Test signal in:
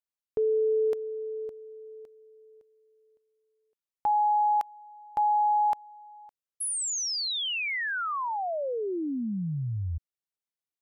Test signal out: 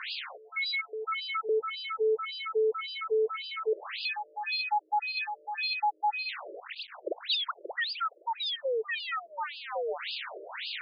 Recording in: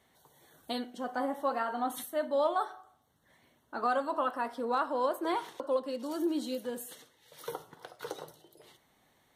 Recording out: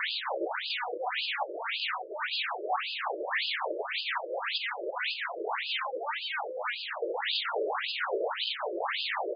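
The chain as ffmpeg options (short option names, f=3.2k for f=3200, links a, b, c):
-filter_complex "[0:a]aeval=exprs='val(0)+0.5*0.0237*sgn(val(0))':c=same,acrossover=split=5700[a][b];[b]acompressor=threshold=-44dB:ratio=4:attack=1:release=60[c];[a][c]amix=inputs=2:normalize=0,aresample=16000,aeval=exprs='0.133*sin(PI/2*8.91*val(0)/0.133)':c=same,aresample=44100,afftfilt=real='re*between(b*sr/1024,430*pow(3600/430,0.5+0.5*sin(2*PI*1.8*pts/sr))/1.41,430*pow(3600/430,0.5+0.5*sin(2*PI*1.8*pts/sr))*1.41)':imag='im*between(b*sr/1024,430*pow(3600/430,0.5+0.5*sin(2*PI*1.8*pts/sr))/1.41,430*pow(3600/430,0.5+0.5*sin(2*PI*1.8*pts/sr))*1.41)':win_size=1024:overlap=0.75,volume=-6dB"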